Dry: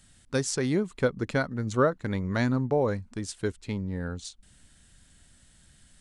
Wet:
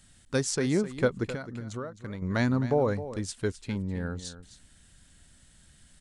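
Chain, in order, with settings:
0:01.27–0:02.22: downward compressor 16 to 1, threshold −33 dBFS, peak gain reduction 16.5 dB
on a send: single-tap delay 261 ms −13.5 dB

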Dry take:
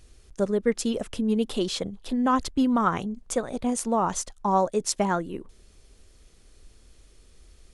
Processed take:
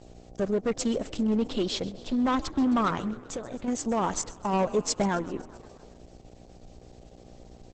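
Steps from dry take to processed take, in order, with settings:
0:01.22–0:01.92: low-pass filter 5,800 Hz 12 dB per octave
gain into a clipping stage and back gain 20.5 dB
0:03.27–0:03.68: downward compressor 6 to 1, threshold −30 dBFS, peak gain reduction 7.5 dB
0:04.53–0:05.09: low-shelf EQ 320 Hz +5 dB
hum with harmonics 60 Hz, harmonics 13, −50 dBFS −2 dB per octave
on a send: echo with shifted repeats 132 ms, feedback 64%, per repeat +41 Hz, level −18.5 dB
on the sum: Opus 10 kbit/s 48,000 Hz

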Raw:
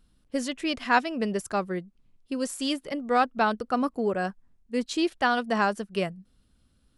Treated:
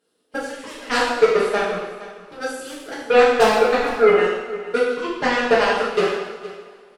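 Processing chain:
0:03.19–0:03.62: comb filter 4.4 ms, depth 55%
0:04.88–0:05.32: low-pass filter 2,600 Hz 12 dB per octave
downward compressor 1.5 to 1, threshold −43 dBFS, peak gain reduction 10 dB
high-pass with resonance 440 Hz, resonance Q 4.9
harmonic generator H 7 −14 dB, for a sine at −13 dBFS
single-tap delay 462 ms −17 dB
convolution reverb, pre-delay 3 ms, DRR −8 dB
level +3 dB

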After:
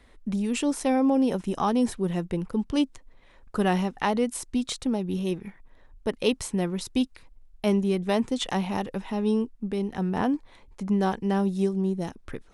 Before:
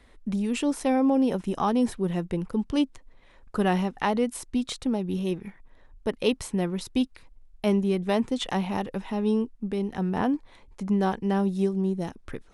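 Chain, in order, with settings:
dynamic equaliser 7,300 Hz, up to +4 dB, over −52 dBFS, Q 0.84

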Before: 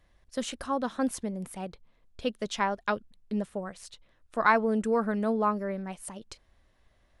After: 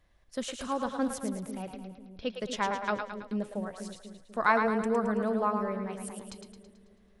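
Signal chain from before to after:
0:01.51–0:02.31: elliptic low-pass filter 5,800 Hz
echo with a time of its own for lows and highs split 460 Hz, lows 246 ms, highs 109 ms, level −6 dB
level −2.5 dB

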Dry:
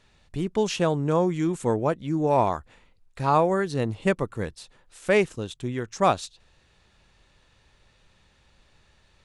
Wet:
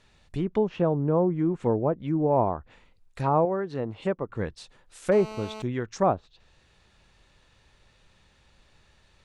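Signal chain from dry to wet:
treble cut that deepens with the level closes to 850 Hz, closed at −20.5 dBFS
0:03.45–0:04.29: spectral tilt +2.5 dB per octave
0:05.12–0:05.62: phone interference −39 dBFS

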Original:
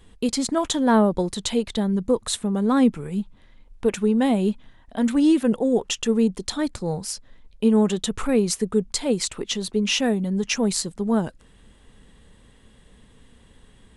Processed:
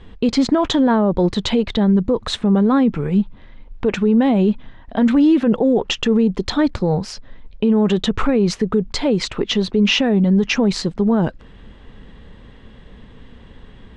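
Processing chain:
high-frequency loss of the air 210 metres
boost into a limiter +18 dB
level −7 dB

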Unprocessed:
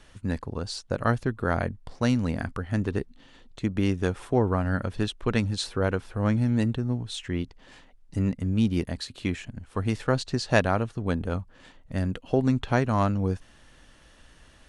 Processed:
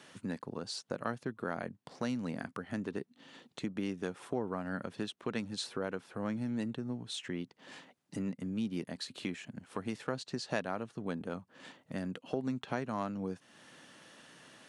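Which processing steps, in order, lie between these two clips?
high-pass filter 150 Hz 24 dB per octave
downward compressor 2 to 1, threshold −43 dBFS, peak gain reduction 15.5 dB
level +1 dB

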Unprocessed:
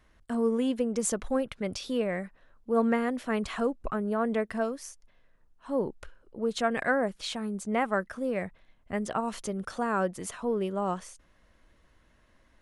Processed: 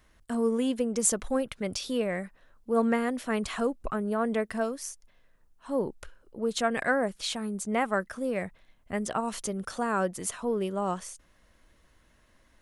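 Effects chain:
high-shelf EQ 5,400 Hz +8.5 dB

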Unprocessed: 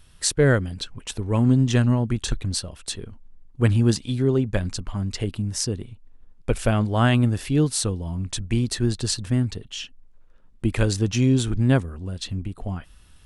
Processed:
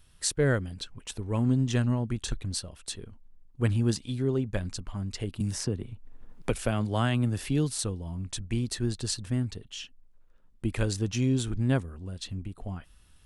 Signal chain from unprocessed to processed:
high-shelf EQ 9,900 Hz +4 dB
0:05.40–0:07.79: multiband upward and downward compressor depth 70%
level −7 dB

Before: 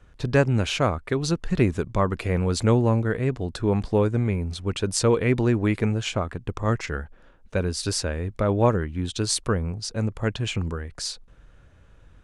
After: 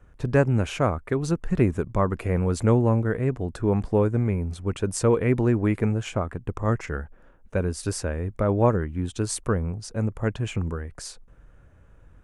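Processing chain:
parametric band 4,100 Hz −12 dB 1.3 octaves

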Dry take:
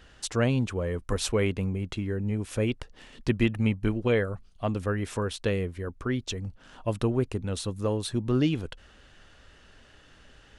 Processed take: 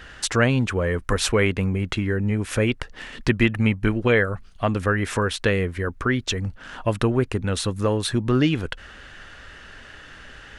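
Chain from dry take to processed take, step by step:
parametric band 1,700 Hz +8 dB 1.2 octaves
in parallel at +1 dB: downward compressor, threshold −31 dBFS, peak gain reduction 13 dB
on the sum: level +2 dB

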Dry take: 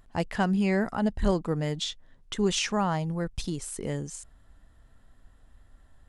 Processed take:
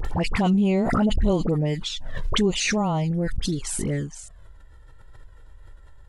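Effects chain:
high-shelf EQ 5,800 Hz −6 dB
all-pass dispersion highs, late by 50 ms, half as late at 1,300 Hz
in parallel at +1.5 dB: brickwall limiter −22.5 dBFS, peak gain reduction 9.5 dB
on the sum: flanger swept by the level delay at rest 2.4 ms, full sweep at −18 dBFS
background raised ahead of every attack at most 25 dB per second

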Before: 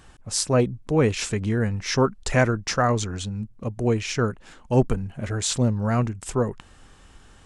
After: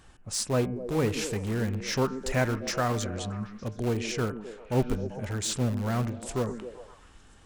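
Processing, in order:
0:00.76–0:01.63: variable-slope delta modulation 64 kbit/s
hum removal 149.4 Hz, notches 20
in parallel at −12 dB: wrap-around overflow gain 19.5 dB
on the sum: echo through a band-pass that steps 130 ms, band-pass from 260 Hz, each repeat 0.7 octaves, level −6 dB
level −6.5 dB

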